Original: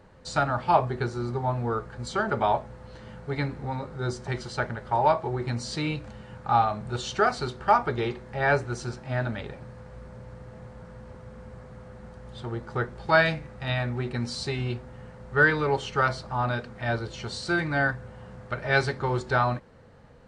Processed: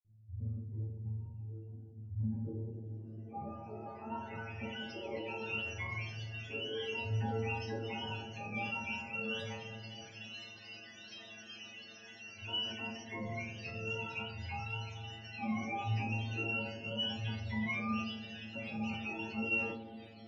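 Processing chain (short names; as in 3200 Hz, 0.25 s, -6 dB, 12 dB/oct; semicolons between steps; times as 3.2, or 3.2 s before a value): spectrum mirrored in octaves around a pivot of 580 Hz; bell 5100 Hz +10.5 dB 0.87 oct; in parallel at -2.5 dB: compressor, threshold -33 dBFS, peak gain reduction 17.5 dB; on the sum: low-pass sweep 110 Hz -> 3000 Hz, 2–4.9; limiter -19 dBFS, peak gain reduction 11.5 dB; metallic resonator 110 Hz, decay 0.66 s, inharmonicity 0.002; dispersion lows, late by 46 ms, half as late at 2400 Hz; on a send at -4 dB: brick-wall FIR band-stop 920–4400 Hz + reverb RT60 2.6 s, pre-delay 7 ms; on the sum: sustainer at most 60 dB/s; gain +2.5 dB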